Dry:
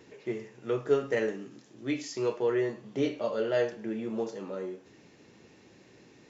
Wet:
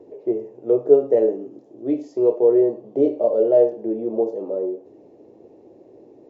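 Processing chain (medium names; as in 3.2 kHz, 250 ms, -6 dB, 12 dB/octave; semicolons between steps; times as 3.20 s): FFT filter 120 Hz 0 dB, 180 Hz -3 dB, 330 Hz +12 dB, 660 Hz +13 dB, 1.5 kHz -16 dB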